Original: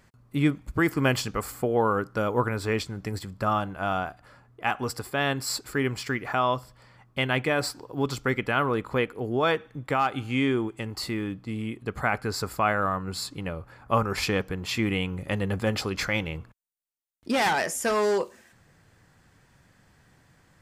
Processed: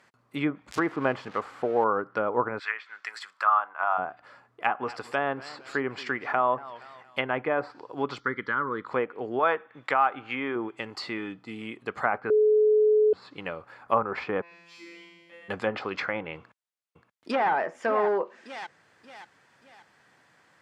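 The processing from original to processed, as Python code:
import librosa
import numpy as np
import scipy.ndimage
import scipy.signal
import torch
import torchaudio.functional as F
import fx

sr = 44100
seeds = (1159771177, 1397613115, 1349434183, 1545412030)

y = fx.crossing_spikes(x, sr, level_db=-19.0, at=(0.71, 1.84))
y = fx.highpass_res(y, sr, hz=fx.line((2.58, 1900.0), (3.97, 950.0)), q=2.0, at=(2.58, 3.97), fade=0.02)
y = fx.echo_warbled(y, sr, ms=232, feedback_pct=42, rate_hz=2.8, cents=141, wet_db=-19, at=(4.65, 7.31))
y = fx.fixed_phaser(y, sr, hz=2600.0, stages=6, at=(8.19, 8.86), fade=0.02)
y = fx.tilt_shelf(y, sr, db=-6.0, hz=700.0, at=(9.39, 10.56))
y = fx.notch_comb(y, sr, f0_hz=550.0, at=(11.18, 11.62))
y = fx.comb_fb(y, sr, f0_hz=170.0, decay_s=1.5, harmonics='all', damping=0.0, mix_pct=100, at=(14.41, 15.48), fade=0.02)
y = fx.echo_throw(y, sr, start_s=16.37, length_s=1.13, ms=580, feedback_pct=40, wet_db=-8.5)
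y = fx.edit(y, sr, fx.bleep(start_s=12.3, length_s=0.83, hz=427.0, db=-15.5), tone=tone)
y = fx.weighting(y, sr, curve='A')
y = fx.env_lowpass_down(y, sr, base_hz=1200.0, full_db=-24.5)
y = fx.high_shelf(y, sr, hz=3900.0, db=-7.0)
y = y * 10.0 ** (3.0 / 20.0)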